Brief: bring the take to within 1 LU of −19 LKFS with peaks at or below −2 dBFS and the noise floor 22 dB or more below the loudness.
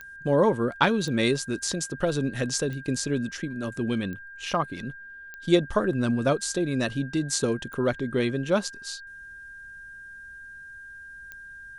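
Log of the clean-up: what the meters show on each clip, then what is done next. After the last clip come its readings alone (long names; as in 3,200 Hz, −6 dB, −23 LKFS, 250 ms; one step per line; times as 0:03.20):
number of clicks 7; interfering tone 1,600 Hz; level of the tone −41 dBFS; integrated loudness −26.5 LKFS; sample peak −5.0 dBFS; target loudness −19.0 LKFS
→ click removal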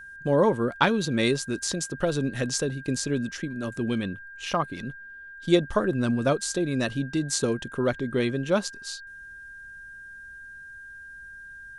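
number of clicks 0; interfering tone 1,600 Hz; level of the tone −41 dBFS
→ notch filter 1,600 Hz, Q 30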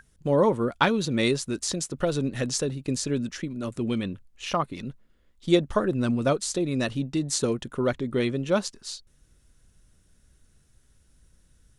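interfering tone none found; integrated loudness −26.5 LKFS; sample peak −5.5 dBFS; target loudness −19.0 LKFS
→ level +7.5 dB
brickwall limiter −2 dBFS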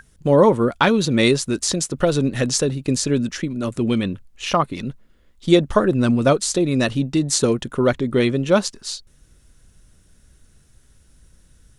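integrated loudness −19.5 LKFS; sample peak −2.0 dBFS; background noise floor −55 dBFS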